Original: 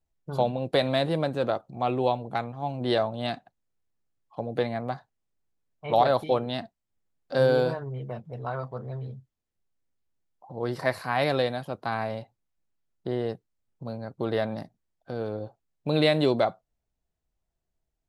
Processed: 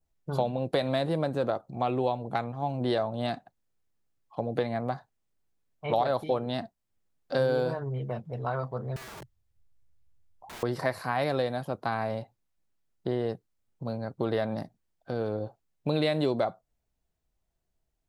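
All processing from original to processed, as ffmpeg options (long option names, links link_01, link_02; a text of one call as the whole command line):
ffmpeg -i in.wav -filter_complex "[0:a]asettb=1/sr,asplit=3[link_01][link_02][link_03];[link_01]atrim=end=8.964[link_04];[link_02]atrim=start=8.96:end=10.63,asetpts=PTS-STARTPTS,afade=type=in:duration=0.004:curve=qsin,afade=type=out:start_time=1.666:duration=0.004:curve=qsin,lowshelf=frequency=150:width_type=q:width=1.5:gain=13.5,acompressor=threshold=-34dB:ratio=2:attack=3.2:release=140:knee=1:detection=peak,aeval=exprs='(mod(112*val(0)+1,2)-1)/112':channel_layout=same[link_05];[link_03]atrim=start=10.626[link_06];[link_04][link_05]acrossfade=duration=0.004:curve1=hsin:curve2=qsin[link_07];[link_07][link_06]acrossfade=duration=0.004:curve1=qsin:curve2=hsin,acompressor=threshold=-27dB:ratio=2.5,adynamicequalizer=threshold=0.00282:dfrequency=2900:dqfactor=0.98:tfrequency=2900:tqfactor=0.98:attack=5:release=100:ratio=0.375:range=3:mode=cutabove:tftype=bell,volume=2dB" out.wav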